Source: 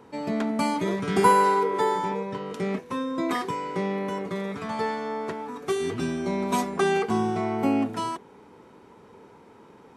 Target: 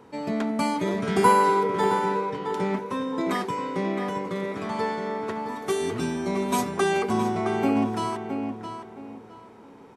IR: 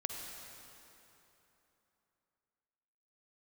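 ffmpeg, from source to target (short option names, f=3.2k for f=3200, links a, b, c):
-filter_complex "[0:a]asettb=1/sr,asplit=3[a][b][c];[a]atrim=end=5.464[d];[b]atrim=start=5.46:end=7.13,asetpts=PTS-STARTPTS,afade=t=in:d=0.004:c=qsin,afade=t=out:st=1.666:d=0.004:c=qsin,highshelf=f=8.4k:g=7[e];[c]atrim=start=7.126[f];[d][e]acrossfade=d=0.004:c1=hsin:c2=qsin[g];[g][f]acrossfade=d=0.004:c1=qsin:c2=hsin,asplit=2[h][i];[i]adelay=666,lowpass=f=3.5k:p=1,volume=-7dB,asplit=2[j][k];[k]adelay=666,lowpass=f=3.5k:p=1,volume=0.28,asplit=2[l][m];[m]adelay=666,lowpass=f=3.5k:p=1,volume=0.28[n];[h][j][l][n]amix=inputs=4:normalize=0"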